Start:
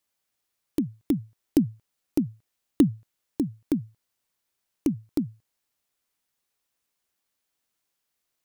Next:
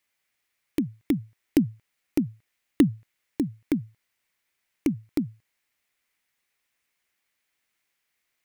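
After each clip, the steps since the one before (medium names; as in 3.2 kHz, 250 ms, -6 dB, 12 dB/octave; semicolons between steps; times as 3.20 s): peaking EQ 2.1 kHz +11.5 dB 0.85 oct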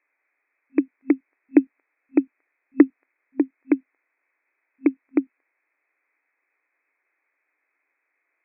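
FFT band-pass 260–2600 Hz; trim +7 dB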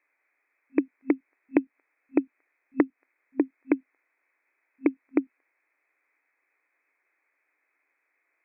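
compression 6:1, threshold -18 dBFS, peak gain reduction 11 dB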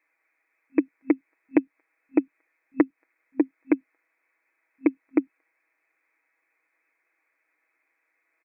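comb 6.2 ms, depth 55%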